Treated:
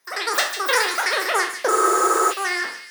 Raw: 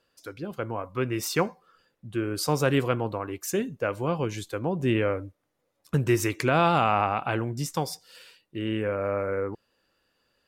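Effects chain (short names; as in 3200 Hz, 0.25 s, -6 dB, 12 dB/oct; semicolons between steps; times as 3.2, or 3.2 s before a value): spectral trails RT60 1.27 s; HPF 55 Hz 24 dB/oct; on a send: split-band echo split 540 Hz, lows 0.161 s, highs 0.537 s, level -8 dB; on the sum: wide varispeed 3.61×; spectral freeze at 1.72, 0.59 s; gain +2.5 dB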